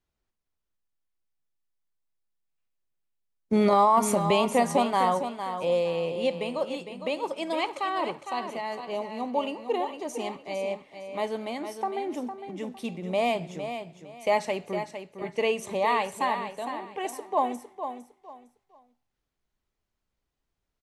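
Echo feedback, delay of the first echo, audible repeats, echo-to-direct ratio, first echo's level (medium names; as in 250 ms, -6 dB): 25%, 457 ms, 3, -8.5 dB, -9.0 dB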